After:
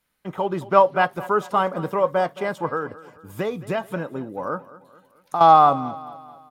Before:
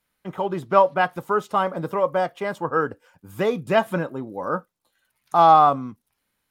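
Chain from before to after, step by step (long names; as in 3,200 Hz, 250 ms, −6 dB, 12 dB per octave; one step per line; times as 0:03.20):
0:02.66–0:05.41: downward compressor 5 to 1, threshold −24 dBFS, peak gain reduction 11 dB
repeating echo 218 ms, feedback 48%, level −18 dB
level +1 dB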